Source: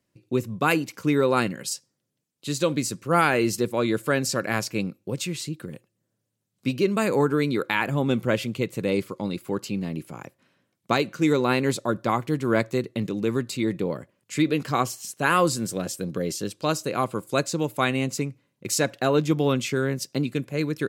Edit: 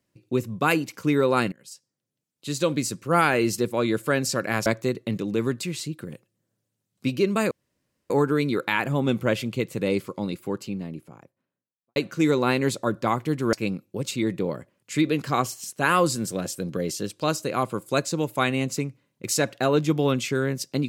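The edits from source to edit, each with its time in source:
1.52–2.67 fade in, from -23.5 dB
4.66–5.24 swap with 12.55–13.52
7.12 insert room tone 0.59 s
9.13–10.98 studio fade out

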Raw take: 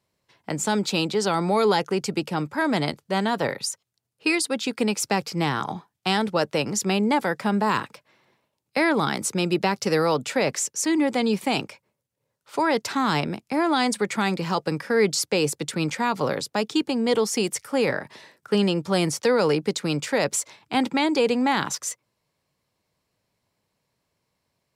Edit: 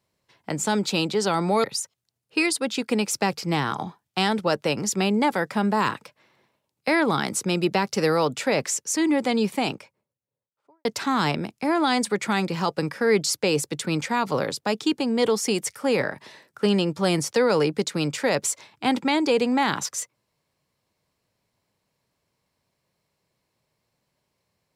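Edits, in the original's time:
1.64–3.53 cut
11.28–12.74 studio fade out

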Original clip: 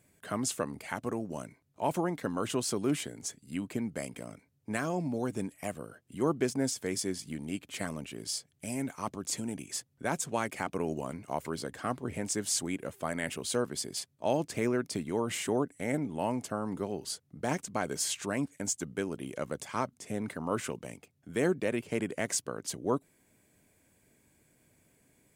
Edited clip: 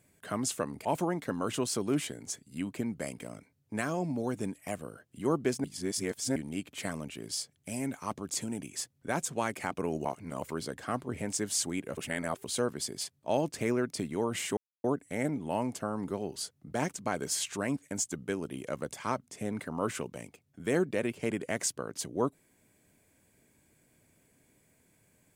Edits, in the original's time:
0.85–1.81 cut
6.6–7.32 reverse
11.01–11.38 reverse
12.93–13.4 reverse
15.53 insert silence 0.27 s

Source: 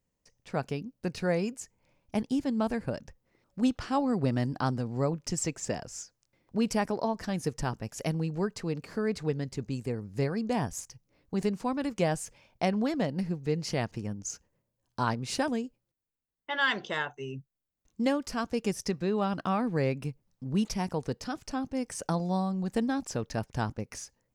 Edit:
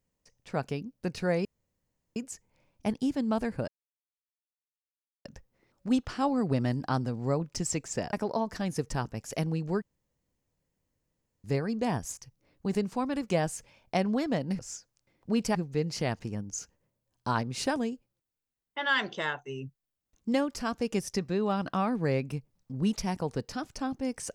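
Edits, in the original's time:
1.45 insert room tone 0.71 s
2.97 insert silence 1.57 s
5.85–6.81 move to 13.27
8.5–10.12 room tone

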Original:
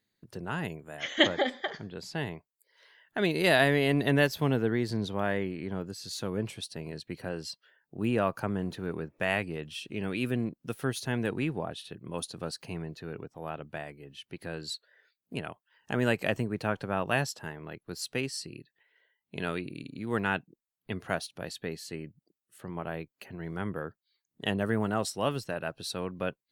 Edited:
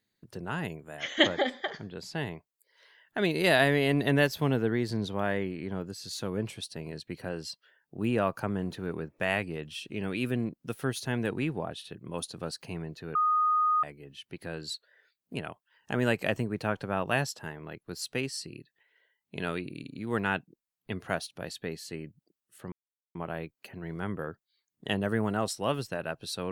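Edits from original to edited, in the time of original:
13.15–13.83 bleep 1240 Hz -22 dBFS
22.72 insert silence 0.43 s

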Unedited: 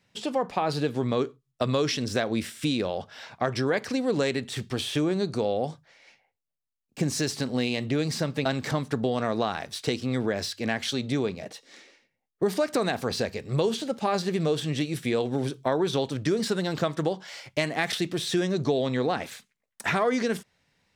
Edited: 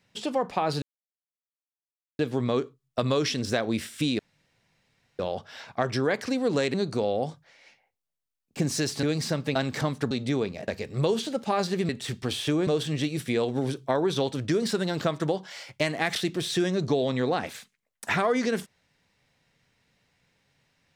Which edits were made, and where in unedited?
0.82 insert silence 1.37 s
2.82 insert room tone 1.00 s
4.37–5.15 move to 14.44
7.44–7.93 cut
9.01–10.94 cut
11.51–13.23 cut

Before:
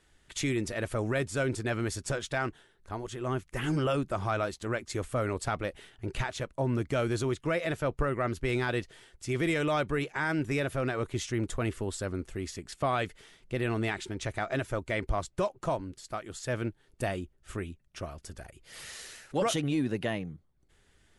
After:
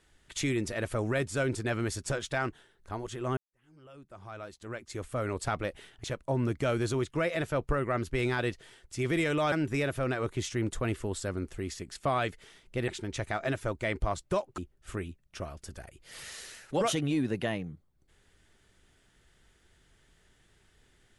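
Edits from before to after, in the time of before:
3.37–5.48 fade in quadratic
6.04–6.34 cut
9.82–10.29 cut
13.65–13.95 cut
15.65–17.19 cut

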